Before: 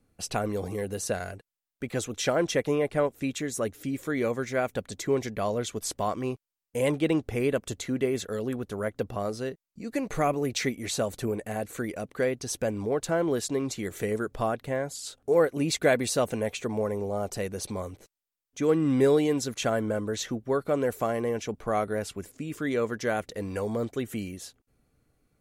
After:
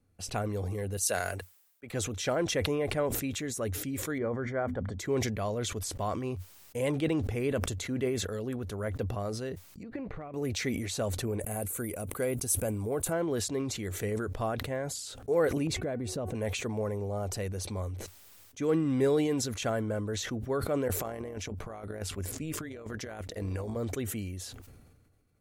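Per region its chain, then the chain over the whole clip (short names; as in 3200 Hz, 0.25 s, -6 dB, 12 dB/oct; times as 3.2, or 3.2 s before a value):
0.97–1.9 HPF 570 Hz 6 dB/oct + high shelf 7000 Hz +11 dB + three-band expander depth 100%
4.18–4.99 polynomial smoothing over 41 samples + notches 50/100/150/200/250 Hz
9.83–10.34 air absorption 390 m + compressor 8:1, threshold -37 dBFS + transient shaper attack +12 dB, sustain +5 dB
11.4–13.13 resonant high shelf 7300 Hz +13.5 dB, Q 1.5 + notch 1800 Hz, Q 7
15.67–16.35 tilt shelf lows +8.5 dB, about 1200 Hz + de-hum 370.3 Hz, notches 8 + compressor 3:1, threshold -30 dBFS
20.88–23.76 negative-ratio compressor -32 dBFS, ratio -0.5 + AM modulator 160 Hz, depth 40%
whole clip: bell 91 Hz +11 dB 0.49 oct; sustainer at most 37 dB/s; gain -5 dB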